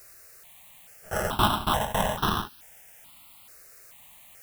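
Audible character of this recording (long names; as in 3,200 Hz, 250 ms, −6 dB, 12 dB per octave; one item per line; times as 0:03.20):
aliases and images of a low sample rate 2,300 Hz, jitter 0%
tremolo saw down 3.6 Hz, depth 95%
a quantiser's noise floor 10 bits, dither triangular
notches that jump at a steady rate 2.3 Hz 900–2,100 Hz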